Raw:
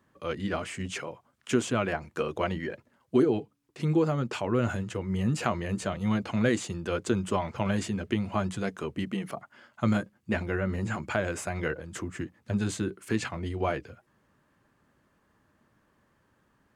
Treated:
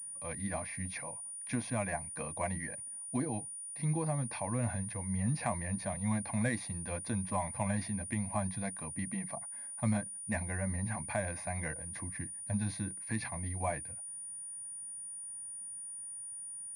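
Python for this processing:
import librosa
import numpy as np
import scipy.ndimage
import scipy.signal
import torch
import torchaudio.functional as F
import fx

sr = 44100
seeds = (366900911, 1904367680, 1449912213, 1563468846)

y = fx.fixed_phaser(x, sr, hz=2000.0, stages=8)
y = fx.pwm(y, sr, carrier_hz=9500.0)
y = y * librosa.db_to_amplitude(-3.0)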